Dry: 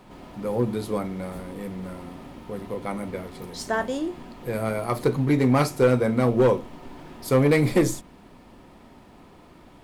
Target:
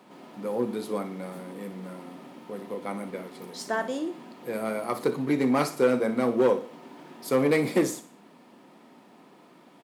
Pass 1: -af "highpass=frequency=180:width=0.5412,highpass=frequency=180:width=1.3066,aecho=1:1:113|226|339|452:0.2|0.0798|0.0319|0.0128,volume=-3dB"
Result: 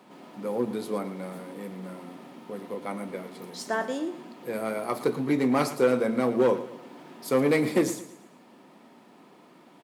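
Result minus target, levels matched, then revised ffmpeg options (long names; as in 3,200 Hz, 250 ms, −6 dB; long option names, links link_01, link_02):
echo 53 ms late
-af "highpass=frequency=180:width=0.5412,highpass=frequency=180:width=1.3066,aecho=1:1:60|120|180|240:0.2|0.0798|0.0319|0.0128,volume=-3dB"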